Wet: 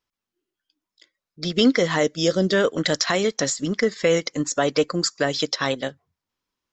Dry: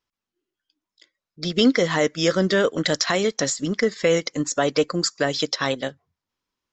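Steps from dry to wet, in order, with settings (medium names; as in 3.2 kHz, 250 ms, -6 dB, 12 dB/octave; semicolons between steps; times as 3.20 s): 2.03–2.53 s: high-order bell 1.5 kHz -8.5 dB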